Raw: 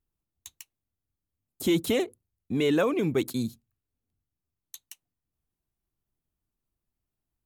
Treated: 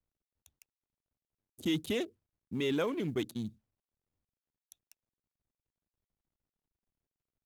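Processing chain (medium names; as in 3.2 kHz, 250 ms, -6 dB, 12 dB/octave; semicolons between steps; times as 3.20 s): local Wiener filter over 41 samples; dynamic bell 4 kHz, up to +7 dB, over -52 dBFS, Q 1.6; companded quantiser 8-bit; pitch shift -1 st; trim -7.5 dB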